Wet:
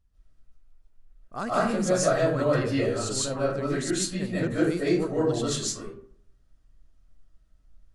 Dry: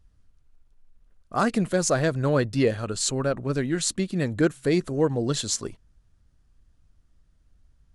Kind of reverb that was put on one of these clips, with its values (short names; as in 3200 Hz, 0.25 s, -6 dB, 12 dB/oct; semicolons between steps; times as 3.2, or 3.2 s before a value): digital reverb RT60 0.59 s, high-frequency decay 0.5×, pre-delay 0.11 s, DRR -9 dB; gain -10 dB